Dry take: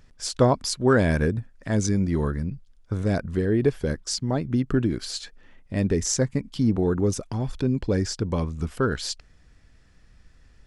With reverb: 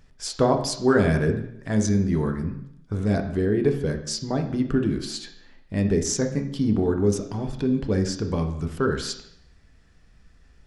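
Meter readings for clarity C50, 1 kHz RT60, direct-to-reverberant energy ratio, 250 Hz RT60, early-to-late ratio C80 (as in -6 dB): 9.0 dB, 0.70 s, 4.5 dB, 0.75 s, 12.0 dB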